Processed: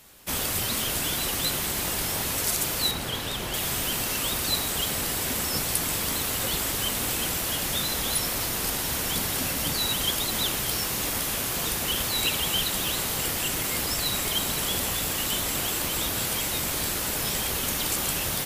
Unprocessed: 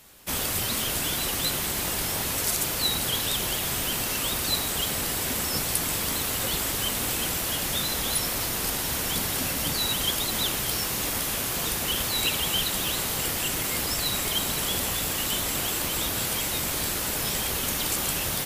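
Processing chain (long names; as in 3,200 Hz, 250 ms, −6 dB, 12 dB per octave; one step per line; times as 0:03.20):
0:02.91–0:03.54: high-shelf EQ 4,200 Hz −9.5 dB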